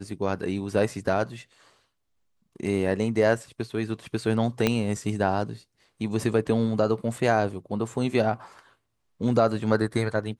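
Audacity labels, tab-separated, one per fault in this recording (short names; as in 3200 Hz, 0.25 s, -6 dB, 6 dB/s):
4.670000	4.670000	pop -8 dBFS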